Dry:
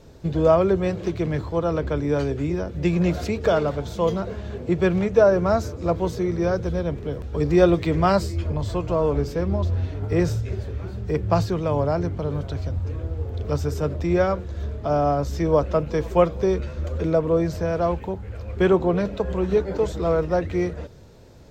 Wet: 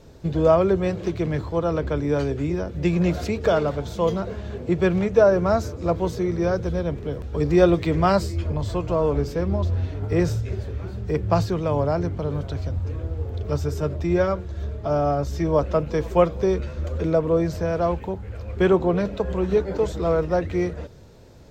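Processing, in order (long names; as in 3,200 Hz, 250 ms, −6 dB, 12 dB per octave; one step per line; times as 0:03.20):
0:13.39–0:15.59: notch comb filter 250 Hz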